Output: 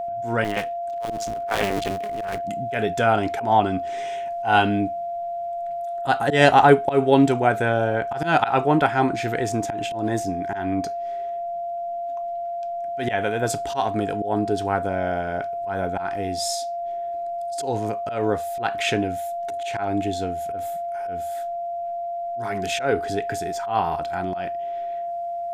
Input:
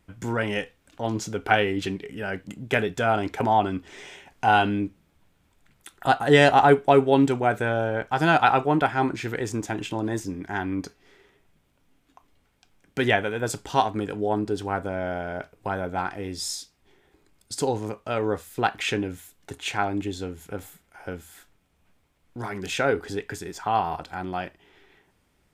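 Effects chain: 0.44–2.44 s: cycle switcher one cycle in 2, muted; slow attack 141 ms; whistle 690 Hz -29 dBFS; trim +3 dB

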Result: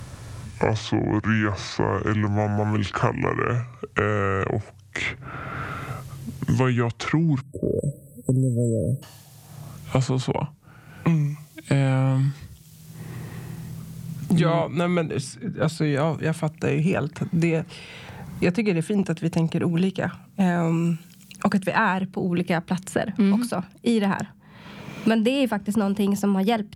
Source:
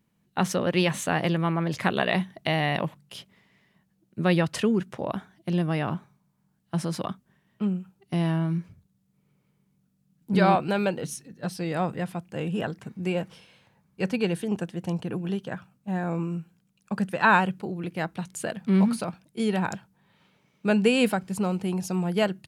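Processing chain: gliding tape speed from 58% -> 110%; spectral selection erased 7.41–9.03 s, 620–7700 Hz; three bands compressed up and down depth 100%; trim +3 dB

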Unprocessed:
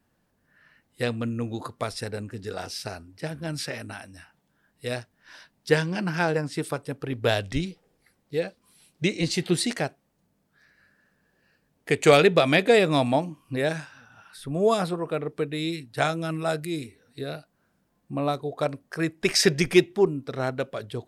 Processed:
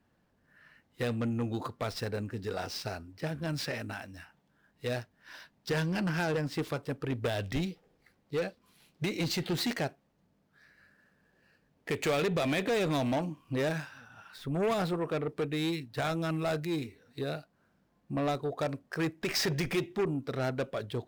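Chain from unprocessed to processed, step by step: median filter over 5 samples; peak limiter -16 dBFS, peak gain reduction 8.5 dB; Chebyshev shaper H 5 -15 dB, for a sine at -16 dBFS; trim -6 dB

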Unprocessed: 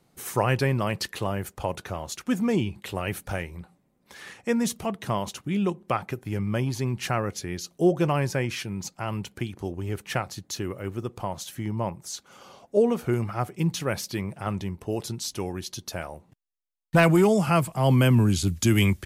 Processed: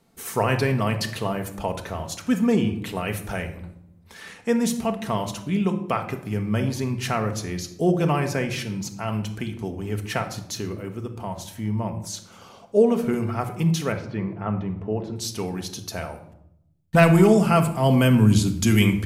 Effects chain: 10.61–11.95 s: harmonic-percussive split percussive -5 dB; 13.92–15.16 s: low-pass 1.7 kHz 12 dB/octave; simulated room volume 2000 m³, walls furnished, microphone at 1.6 m; trim +1 dB

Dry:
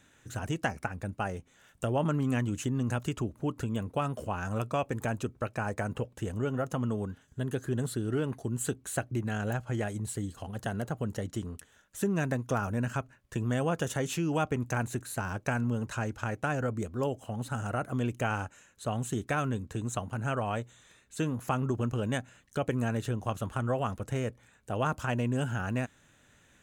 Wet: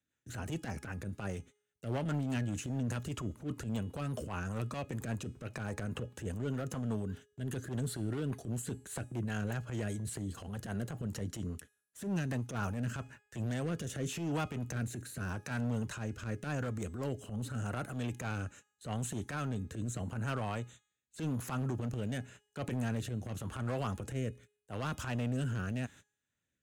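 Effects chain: gate -50 dBFS, range -34 dB; peaking EQ 730 Hz -3.5 dB 1.8 oct; hard clipper -28 dBFS, distortion -14 dB; high-pass 56 Hz; transient shaper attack -12 dB, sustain +4 dB; rotary cabinet horn 5 Hz, later 0.85 Hz, at 12.15 s; de-hum 417 Hz, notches 39; three bands compressed up and down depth 40%

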